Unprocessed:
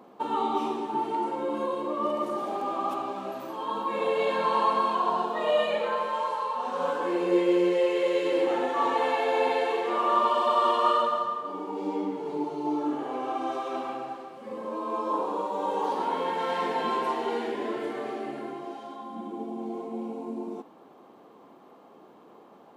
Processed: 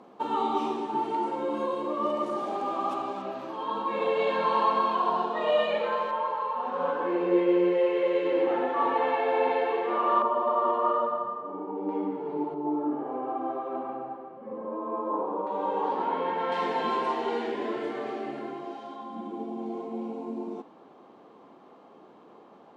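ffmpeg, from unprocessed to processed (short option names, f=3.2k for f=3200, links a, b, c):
-af "asetnsamples=n=441:p=0,asendcmd='3.22 lowpass f 4700;6.11 lowpass f 2400;10.22 lowpass f 1100;11.89 lowpass f 1900;12.54 lowpass f 1100;15.47 lowpass f 2600;16.52 lowpass f 6000',lowpass=8.2k"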